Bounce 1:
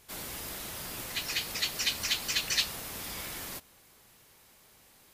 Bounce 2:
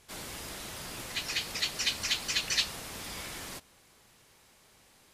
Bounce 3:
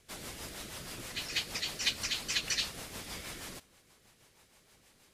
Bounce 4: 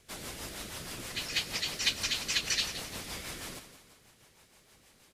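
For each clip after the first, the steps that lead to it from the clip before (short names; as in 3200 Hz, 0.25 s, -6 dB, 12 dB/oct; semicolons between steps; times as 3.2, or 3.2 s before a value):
LPF 10000 Hz 12 dB/oct
rotary speaker horn 6.3 Hz
feedback echo 0.172 s, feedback 42%, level -11.5 dB; gain +2 dB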